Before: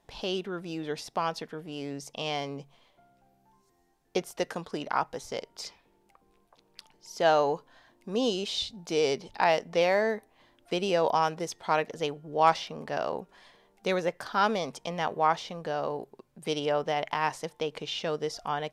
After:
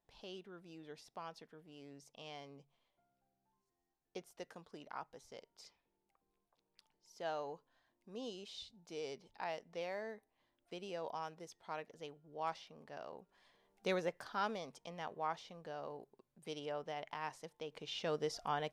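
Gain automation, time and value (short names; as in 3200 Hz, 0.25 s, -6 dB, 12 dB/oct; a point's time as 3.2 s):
13.17 s -18.5 dB
13.9 s -8 dB
14.67 s -15 dB
17.64 s -15 dB
18.13 s -6.5 dB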